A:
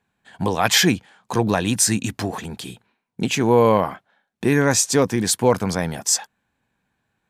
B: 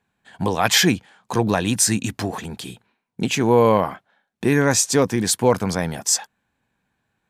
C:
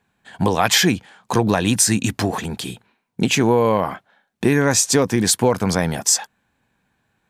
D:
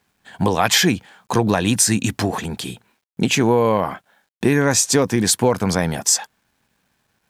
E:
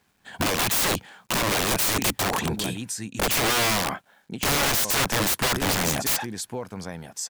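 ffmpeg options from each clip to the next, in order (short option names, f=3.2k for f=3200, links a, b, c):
-af anull
-af "acompressor=threshold=-17dB:ratio=5,volume=5dB"
-af "acrusher=bits=10:mix=0:aa=0.000001"
-af "aecho=1:1:1104:0.158,aeval=exprs='(mod(7.5*val(0)+1,2)-1)/7.5':c=same"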